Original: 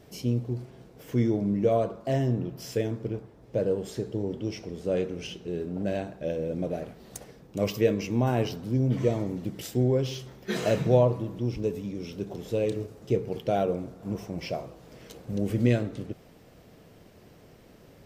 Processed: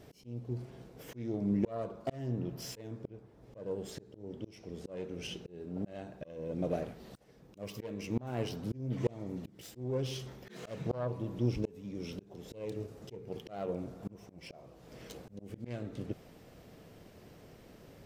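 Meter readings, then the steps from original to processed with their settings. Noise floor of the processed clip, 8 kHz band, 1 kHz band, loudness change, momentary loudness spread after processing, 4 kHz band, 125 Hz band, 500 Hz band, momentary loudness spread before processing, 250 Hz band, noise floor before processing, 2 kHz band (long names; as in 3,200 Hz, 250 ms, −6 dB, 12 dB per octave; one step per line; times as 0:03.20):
−58 dBFS, −7.5 dB, −12.0 dB, −10.5 dB, 20 LU, −7.5 dB, −10.5 dB, −12.5 dB, 12 LU, −9.5 dB, −54 dBFS, −11.5 dB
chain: phase distortion by the signal itself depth 0.24 ms
volume swells 493 ms
level −1.5 dB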